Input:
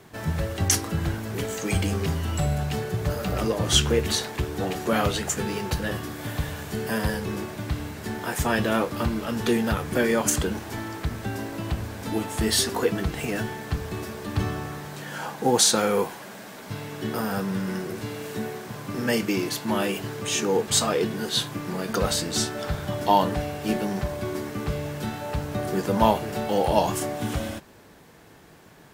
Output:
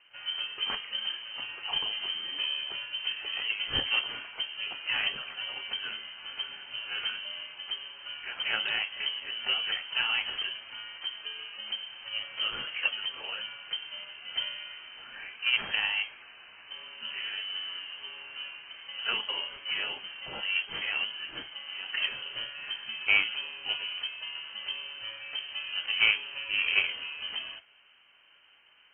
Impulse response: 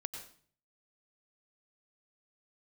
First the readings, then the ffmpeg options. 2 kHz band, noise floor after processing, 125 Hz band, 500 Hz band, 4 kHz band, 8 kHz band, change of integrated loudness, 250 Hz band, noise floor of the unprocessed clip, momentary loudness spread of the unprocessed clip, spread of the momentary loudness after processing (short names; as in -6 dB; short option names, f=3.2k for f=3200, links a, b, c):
+2.0 dB, -58 dBFS, -30.5 dB, -25.0 dB, +2.0 dB, under -40 dB, -5.0 dB, -30.0 dB, -47 dBFS, 11 LU, 13 LU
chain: -af "aeval=exprs='0.631*(cos(1*acos(clip(val(0)/0.631,-1,1)))-cos(1*PI/2))+0.0447*(cos(7*acos(clip(val(0)/0.631,-1,1)))-cos(7*PI/2))+0.0126*(cos(8*acos(clip(val(0)/0.631,-1,1)))-cos(8*PI/2))':c=same,lowpass=f=2.7k:t=q:w=0.5098,lowpass=f=2.7k:t=q:w=0.6013,lowpass=f=2.7k:t=q:w=0.9,lowpass=f=2.7k:t=q:w=2.563,afreqshift=-3200,volume=-4dB" -ar 22050 -c:a aac -b:a 16k